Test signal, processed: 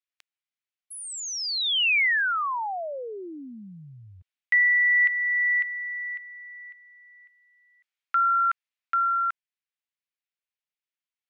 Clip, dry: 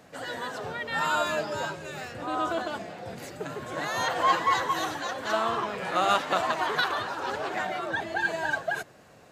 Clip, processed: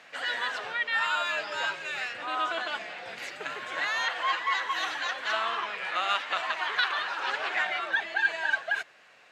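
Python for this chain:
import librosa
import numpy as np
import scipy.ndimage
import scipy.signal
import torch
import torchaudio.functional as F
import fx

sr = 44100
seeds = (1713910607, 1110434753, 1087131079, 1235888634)

y = fx.rider(x, sr, range_db=4, speed_s=0.5)
y = fx.bandpass_q(y, sr, hz=2400.0, q=1.4)
y = y * 10.0 ** (6.5 / 20.0)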